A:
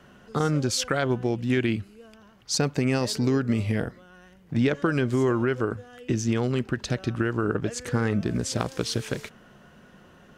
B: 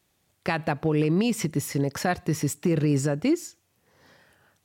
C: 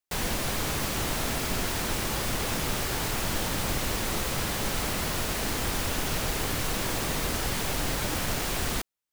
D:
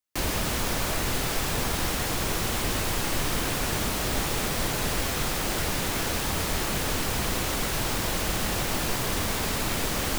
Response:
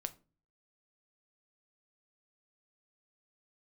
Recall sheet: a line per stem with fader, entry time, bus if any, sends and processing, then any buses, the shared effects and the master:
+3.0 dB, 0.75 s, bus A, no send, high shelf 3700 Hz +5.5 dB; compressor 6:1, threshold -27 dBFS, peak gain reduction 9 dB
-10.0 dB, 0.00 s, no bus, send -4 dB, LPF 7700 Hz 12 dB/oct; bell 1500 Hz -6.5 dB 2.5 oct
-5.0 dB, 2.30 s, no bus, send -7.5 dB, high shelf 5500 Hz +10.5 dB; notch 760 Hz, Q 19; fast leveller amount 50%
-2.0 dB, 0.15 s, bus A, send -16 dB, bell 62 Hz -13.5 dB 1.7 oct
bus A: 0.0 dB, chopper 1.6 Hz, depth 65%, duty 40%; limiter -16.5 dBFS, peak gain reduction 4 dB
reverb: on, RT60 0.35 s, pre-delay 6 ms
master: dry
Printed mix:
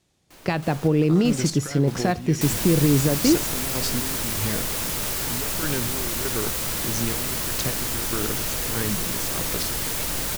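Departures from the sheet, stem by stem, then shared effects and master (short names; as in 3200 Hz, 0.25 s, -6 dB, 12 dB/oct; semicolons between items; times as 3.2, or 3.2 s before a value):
stem B -10.0 dB -> +1.5 dB; stem D -2.0 dB -> -13.5 dB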